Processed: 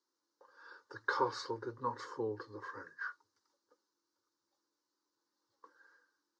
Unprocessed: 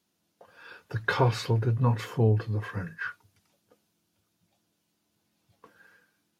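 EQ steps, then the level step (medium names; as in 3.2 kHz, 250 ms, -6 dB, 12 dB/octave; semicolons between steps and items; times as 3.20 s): cabinet simulation 410–5700 Hz, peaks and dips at 440 Hz -6 dB, 720 Hz -4 dB, 1.4 kHz -4 dB, 2 kHz -5 dB, 3.3 kHz -10 dB; static phaser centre 680 Hz, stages 6; -1.0 dB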